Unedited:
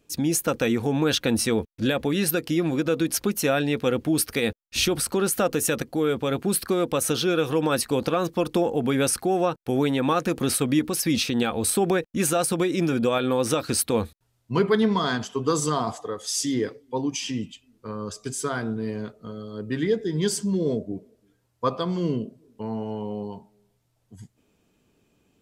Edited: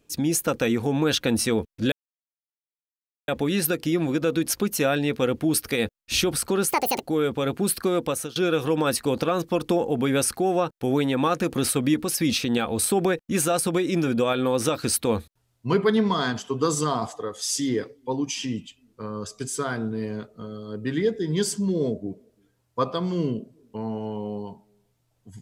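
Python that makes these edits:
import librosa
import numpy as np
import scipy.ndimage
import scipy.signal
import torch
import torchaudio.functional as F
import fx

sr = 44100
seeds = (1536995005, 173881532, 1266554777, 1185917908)

y = fx.edit(x, sr, fx.insert_silence(at_s=1.92, length_s=1.36),
    fx.speed_span(start_s=5.35, length_s=0.53, speed=1.67),
    fx.fade_out_to(start_s=6.9, length_s=0.31, floor_db=-24.0), tone=tone)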